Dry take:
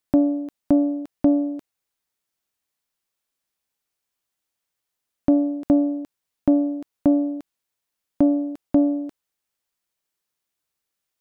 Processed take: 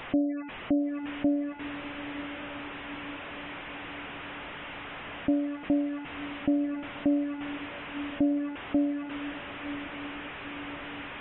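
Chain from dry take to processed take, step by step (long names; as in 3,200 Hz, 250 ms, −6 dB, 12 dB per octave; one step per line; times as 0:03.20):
linear delta modulator 16 kbit/s, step −25.5 dBFS
gate on every frequency bin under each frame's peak −25 dB strong
feedback delay with all-pass diffusion 1,061 ms, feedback 62%, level −12.5 dB
level −8.5 dB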